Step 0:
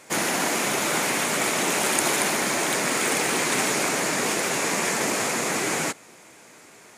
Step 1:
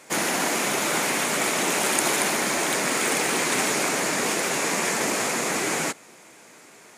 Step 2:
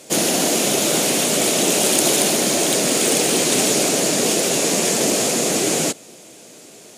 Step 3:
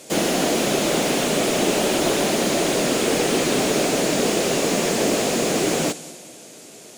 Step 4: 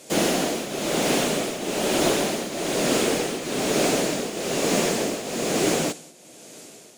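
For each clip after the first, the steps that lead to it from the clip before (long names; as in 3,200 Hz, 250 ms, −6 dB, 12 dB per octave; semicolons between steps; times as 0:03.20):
high-pass filter 120 Hz
sine wavefolder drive 7 dB, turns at −1 dBFS; flat-topped bell 1,400 Hz −11.5 dB; level −2.5 dB
echo machine with several playback heads 64 ms, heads first and third, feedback 57%, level −21.5 dB; slew-rate limiting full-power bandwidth 290 Hz
shaped tremolo triangle 1.1 Hz, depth 75%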